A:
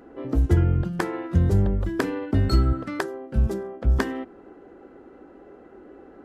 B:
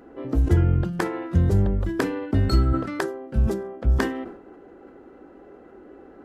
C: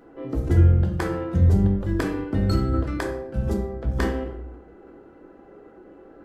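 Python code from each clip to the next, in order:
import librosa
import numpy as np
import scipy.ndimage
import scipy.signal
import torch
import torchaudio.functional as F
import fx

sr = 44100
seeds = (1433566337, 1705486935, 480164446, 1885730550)

y1 = fx.sustainer(x, sr, db_per_s=86.0)
y2 = fx.room_shoebox(y1, sr, seeds[0], volume_m3=140.0, walls='mixed', distance_m=0.71)
y2 = F.gain(torch.from_numpy(y2), -3.5).numpy()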